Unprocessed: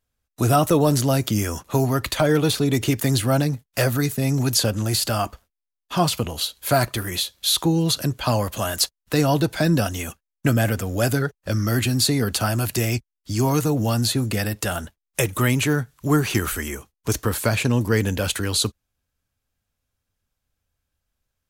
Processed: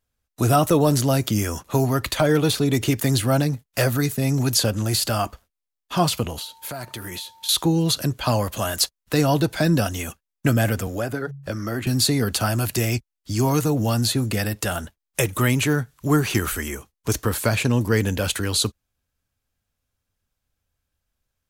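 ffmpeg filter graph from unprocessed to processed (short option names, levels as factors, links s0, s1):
-filter_complex "[0:a]asettb=1/sr,asplit=3[s0][s1][s2];[s0]atrim=end=6.384[s3];[s1]atrim=start=6.38:end=7.49,asetpts=PTS-STARTPTS,afade=t=in:d=0.004:c=qsin,afade=t=out:st=1.106:d=0.004:c=qsin,highpass=95,acompressor=threshold=0.0355:ratio=8:attack=3.2:release=140:knee=1:detection=peak,aeval=exprs='val(0)+0.00355*sin(2*PI*900*n/s)':c=same[s4];[s2]atrim=start=7.486[s5];[s3][s4]acrossfade=d=0.004:c1=hsin:c2=qsin[s6];[s6][s5]acrossfade=d=0.004:c1=qsin:c2=hsin,asettb=1/sr,asplit=3[s7][s8][s9];[s7]atrim=end=10.874[s10];[s8]atrim=start=10.87:end=11.87,asetpts=PTS-STARTPTS,afade=t=in:d=0.004:c=qsin,afade=t=out:st=0.996:d=0.004:c=qsin,bandreject=f=69.55:t=h:w=4,bandreject=f=139.1:t=h:w=4,acrossover=split=250|1000|2200[s11][s12][s13][s14];[s11]acompressor=threshold=0.02:ratio=3[s15];[s12]acompressor=threshold=0.0501:ratio=3[s16];[s13]acompressor=threshold=0.0178:ratio=3[s17];[s14]acompressor=threshold=0.00501:ratio=3[s18];[s15][s16][s17][s18]amix=inputs=4:normalize=0[s19];[s9]atrim=start=11.866[s20];[s10][s19]acrossfade=d=0.004:c1=hsin:c2=qsin[s21];[s21][s20]acrossfade=d=0.004:c1=qsin:c2=hsin"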